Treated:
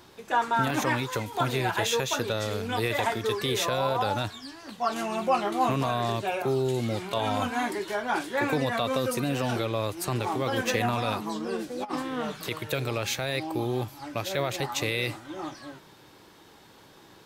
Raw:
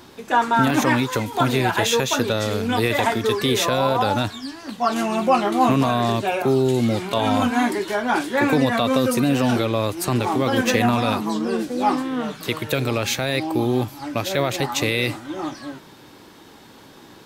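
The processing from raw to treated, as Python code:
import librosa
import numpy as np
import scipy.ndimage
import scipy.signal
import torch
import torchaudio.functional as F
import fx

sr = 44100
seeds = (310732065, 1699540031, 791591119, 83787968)

y = fx.peak_eq(x, sr, hz=250.0, db=-6.5, octaves=0.51)
y = fx.over_compress(y, sr, threshold_db=-24.0, ratio=-0.5, at=(11.83, 12.5), fade=0.02)
y = F.gain(torch.from_numpy(y), -6.5).numpy()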